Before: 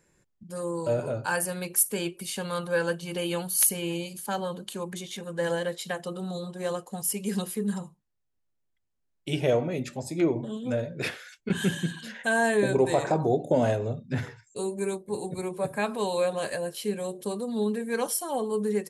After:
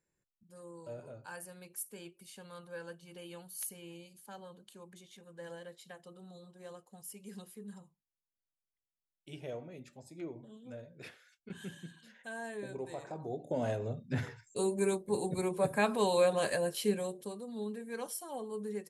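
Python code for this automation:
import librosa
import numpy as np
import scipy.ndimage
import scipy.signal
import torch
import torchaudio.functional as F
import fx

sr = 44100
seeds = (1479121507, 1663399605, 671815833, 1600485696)

y = fx.gain(x, sr, db=fx.line((13.12, -18.5), (13.77, -8.0), (14.61, -1.0), (16.91, -1.0), (17.35, -12.0)))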